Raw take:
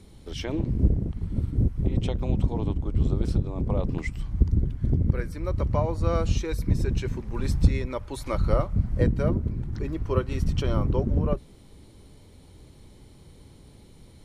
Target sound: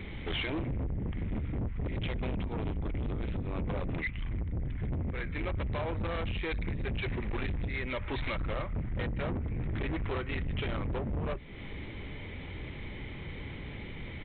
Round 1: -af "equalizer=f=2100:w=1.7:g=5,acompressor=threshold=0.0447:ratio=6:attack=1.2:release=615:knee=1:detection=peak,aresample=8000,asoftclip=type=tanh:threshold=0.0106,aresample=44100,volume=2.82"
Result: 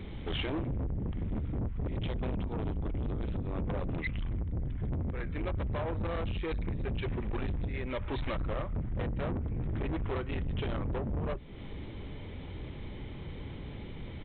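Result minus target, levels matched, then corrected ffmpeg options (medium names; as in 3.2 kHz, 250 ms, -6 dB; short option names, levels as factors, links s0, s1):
2 kHz band -5.0 dB
-af "equalizer=f=2100:w=1.7:g=15,acompressor=threshold=0.0447:ratio=6:attack=1.2:release=615:knee=1:detection=peak,aresample=8000,asoftclip=type=tanh:threshold=0.0106,aresample=44100,volume=2.82"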